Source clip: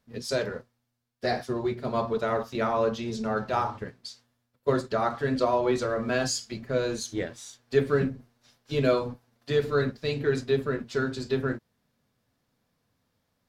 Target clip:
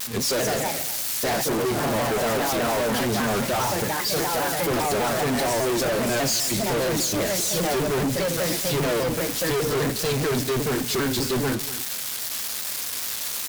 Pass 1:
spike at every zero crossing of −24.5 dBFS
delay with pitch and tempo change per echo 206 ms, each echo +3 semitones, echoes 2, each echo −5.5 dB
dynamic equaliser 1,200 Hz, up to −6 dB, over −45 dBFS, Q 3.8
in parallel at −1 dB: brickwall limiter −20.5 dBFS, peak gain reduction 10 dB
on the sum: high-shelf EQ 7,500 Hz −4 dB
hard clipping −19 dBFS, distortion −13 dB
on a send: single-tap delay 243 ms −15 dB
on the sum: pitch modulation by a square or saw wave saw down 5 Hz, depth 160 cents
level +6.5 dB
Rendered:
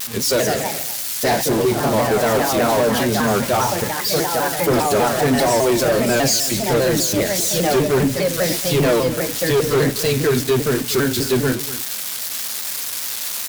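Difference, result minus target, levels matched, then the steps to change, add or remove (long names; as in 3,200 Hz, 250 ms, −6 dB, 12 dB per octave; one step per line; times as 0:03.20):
hard clipping: distortion −8 dB
change: hard clipping −28.5 dBFS, distortion −5 dB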